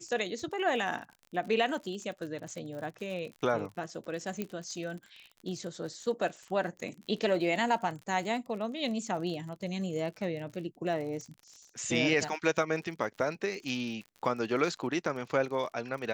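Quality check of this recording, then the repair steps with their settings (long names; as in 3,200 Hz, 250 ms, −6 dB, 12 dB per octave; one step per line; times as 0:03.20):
surface crackle 49 per second −40 dBFS
0:04.42: click −20 dBFS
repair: click removal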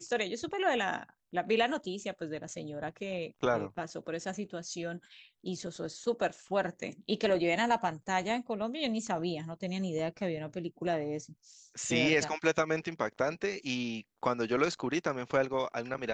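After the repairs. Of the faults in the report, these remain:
none of them is left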